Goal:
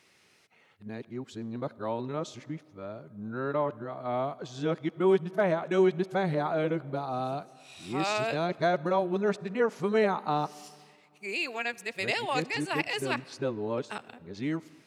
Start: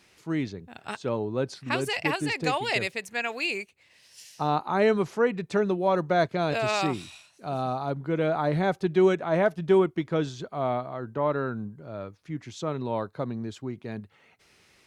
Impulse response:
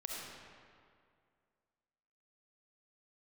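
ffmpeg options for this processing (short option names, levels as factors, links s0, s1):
-filter_complex "[0:a]areverse,highpass=120,asplit=2[s0][s1];[1:a]atrim=start_sample=2205,asetrate=41895,aresample=44100[s2];[s1][s2]afir=irnorm=-1:irlink=0,volume=0.106[s3];[s0][s3]amix=inputs=2:normalize=0,volume=0.668"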